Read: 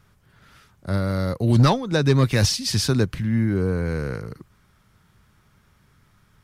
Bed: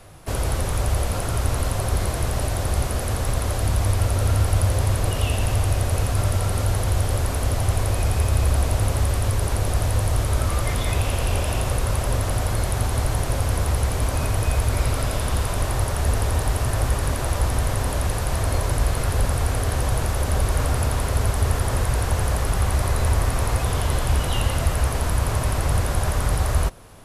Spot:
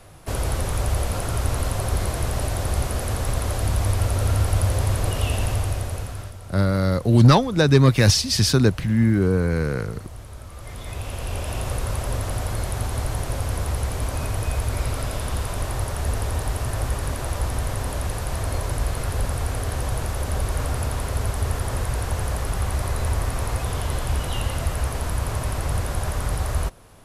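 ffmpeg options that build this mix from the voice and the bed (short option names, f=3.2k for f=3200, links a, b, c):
-filter_complex "[0:a]adelay=5650,volume=3dB[a];[1:a]volume=13dB,afade=t=out:st=5.4:d=0.93:silence=0.149624,afade=t=in:st=10.53:d=1.19:silence=0.199526[b];[a][b]amix=inputs=2:normalize=0"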